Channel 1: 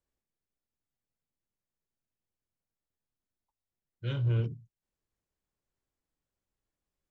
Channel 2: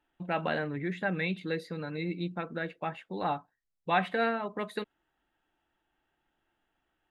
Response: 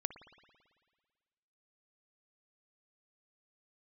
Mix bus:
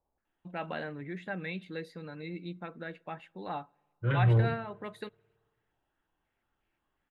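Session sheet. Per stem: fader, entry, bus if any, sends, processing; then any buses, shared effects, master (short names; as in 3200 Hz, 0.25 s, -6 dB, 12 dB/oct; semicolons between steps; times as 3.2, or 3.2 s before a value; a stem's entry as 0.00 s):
+0.5 dB, 0.00 s, send -4.5 dB, stepped low-pass 5.6 Hz 840–2500 Hz
-7.0 dB, 0.25 s, send -20.5 dB, dry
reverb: on, RT60 1.7 s, pre-delay 55 ms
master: dry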